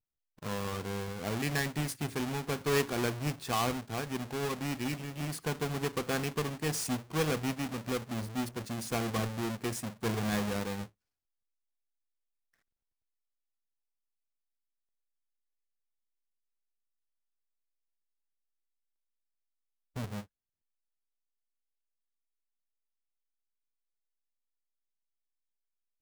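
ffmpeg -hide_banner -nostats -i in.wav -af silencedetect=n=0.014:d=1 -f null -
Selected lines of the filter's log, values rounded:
silence_start: 10.83
silence_end: 19.97 | silence_duration: 9.13
silence_start: 20.20
silence_end: 26.02 | silence_duration: 5.82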